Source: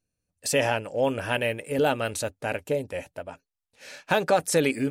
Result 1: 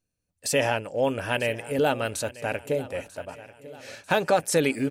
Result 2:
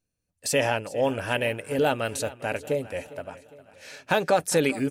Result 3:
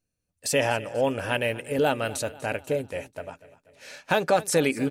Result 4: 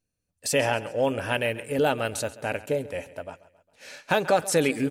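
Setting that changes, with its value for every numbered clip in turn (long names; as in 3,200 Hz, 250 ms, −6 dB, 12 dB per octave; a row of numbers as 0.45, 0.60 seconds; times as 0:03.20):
repeating echo, delay time: 942, 406, 244, 135 milliseconds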